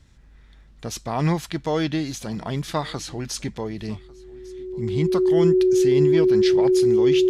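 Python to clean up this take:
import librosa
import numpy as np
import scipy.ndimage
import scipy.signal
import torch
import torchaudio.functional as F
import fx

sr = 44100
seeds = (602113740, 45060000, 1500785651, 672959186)

y = fx.notch(x, sr, hz=370.0, q=30.0)
y = fx.fix_echo_inverse(y, sr, delay_ms=1148, level_db=-24.0)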